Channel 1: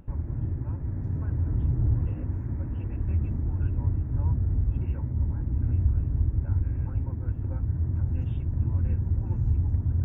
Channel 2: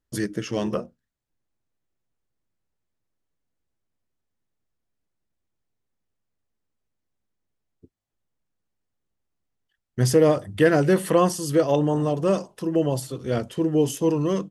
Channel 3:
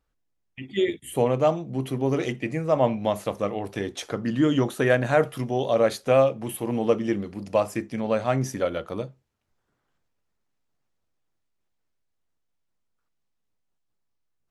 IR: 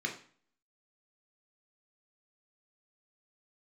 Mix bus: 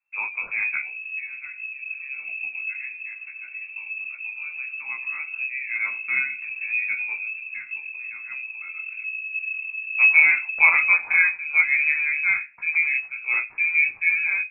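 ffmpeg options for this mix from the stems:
-filter_complex "[0:a]equalizer=f=130:t=o:w=0.77:g=9.5,flanger=delay=16.5:depth=4.7:speed=0.21,adelay=750,volume=-5dB,asplit=2[a][b];[b]volume=-12.5dB[c];[1:a]volume=2.5dB,asplit=2[d][e];[e]volume=-20dB[f];[2:a]agate=range=-33dB:threshold=-33dB:ratio=3:detection=peak,lowshelf=f=380:g=7.5,volume=-7dB,afade=t=in:st=5.15:d=0.43:silence=0.281838,afade=t=out:st=7.03:d=0.76:silence=0.316228,asplit=3[g][h][i];[h]volume=-9dB[j];[i]apad=whole_len=476143[k];[a][k]sidechaincompress=threshold=-44dB:ratio=8:attack=24:release=122[l];[3:a]atrim=start_sample=2205[m];[c][f][j]amix=inputs=3:normalize=0[n];[n][m]afir=irnorm=-1:irlink=0[o];[l][d][g][o]amix=inputs=4:normalize=0,flanger=delay=15.5:depth=7.7:speed=1.2,lowpass=f=2.3k:t=q:w=0.5098,lowpass=f=2.3k:t=q:w=0.6013,lowpass=f=2.3k:t=q:w=0.9,lowpass=f=2.3k:t=q:w=2.563,afreqshift=-2700"

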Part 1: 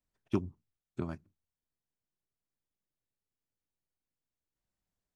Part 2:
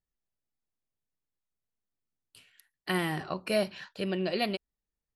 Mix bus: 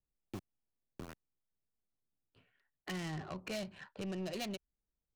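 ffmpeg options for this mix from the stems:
-filter_complex "[0:a]aeval=exprs='val(0)*gte(abs(val(0)),0.0251)':c=same,volume=-7.5dB[a];[1:a]adynamicsmooth=sensitivity=6:basefreq=1.1k,volume=0.5dB[b];[a][b]amix=inputs=2:normalize=0,acrossover=split=150|3000[c][d][e];[d]acompressor=threshold=-40dB:ratio=3[f];[c][f][e]amix=inputs=3:normalize=0,asoftclip=type=tanh:threshold=-34.5dB"

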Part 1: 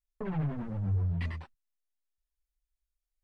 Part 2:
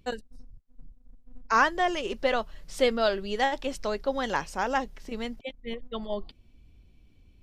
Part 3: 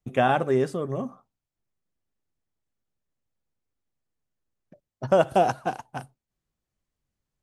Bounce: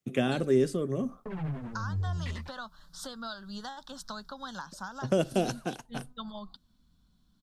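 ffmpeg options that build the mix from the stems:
-filter_complex "[0:a]highshelf=f=4k:g=9.5,adelay=1050,volume=-2.5dB[a];[1:a]lowshelf=f=370:g=-10.5,acompressor=threshold=-33dB:ratio=5,firequalizer=gain_entry='entry(120,0);entry(180,12);entry(380,-12);entry(980,5);entry(1500,8);entry(2200,-28);entry(3600,6);entry(5900,1)':delay=0.05:min_phase=1,adelay=250,volume=-2.5dB[b];[2:a]highpass=160,equalizer=f=850:w=1.5:g=-10,volume=2.5dB[c];[a][b][c]amix=inputs=3:normalize=0,acrossover=split=450|3000[d][e][f];[e]acompressor=threshold=-40dB:ratio=2.5[g];[d][g][f]amix=inputs=3:normalize=0"

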